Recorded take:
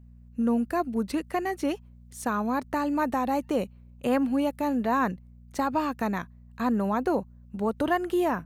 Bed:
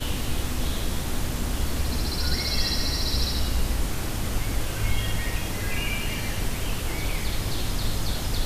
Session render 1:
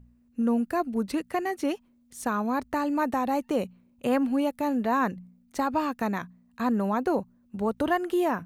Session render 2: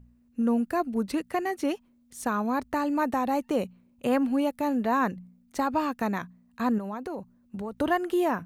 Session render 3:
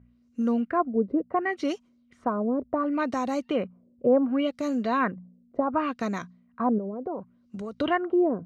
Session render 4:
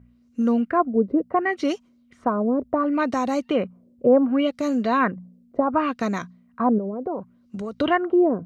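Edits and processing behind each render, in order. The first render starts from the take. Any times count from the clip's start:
de-hum 60 Hz, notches 3
6.78–7.72 s: compression, threshold -31 dBFS
comb of notches 870 Hz; LFO low-pass sine 0.69 Hz 460–6600 Hz
trim +4.5 dB

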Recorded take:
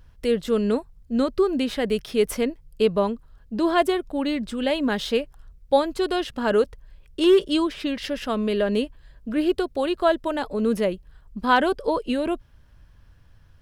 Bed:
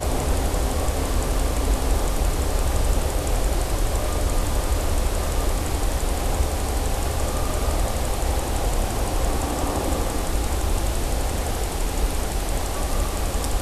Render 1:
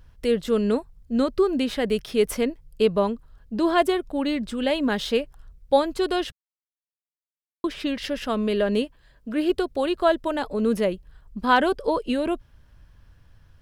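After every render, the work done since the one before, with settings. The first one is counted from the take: 6.32–7.64 s: mute; 8.82–9.50 s: bass shelf 120 Hz -10 dB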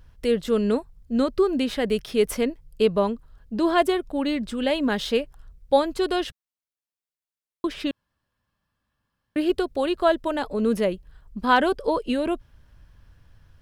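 7.91–9.36 s: room tone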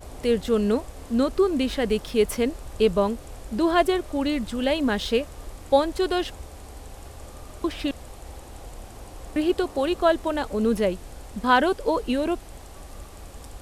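add bed -17.5 dB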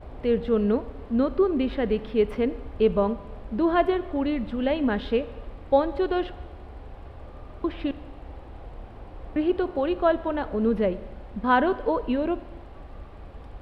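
distance through air 420 m; Schroeder reverb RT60 1.3 s, combs from 32 ms, DRR 15 dB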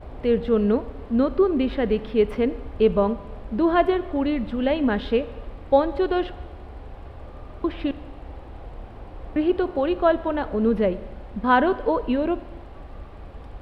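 trim +2.5 dB

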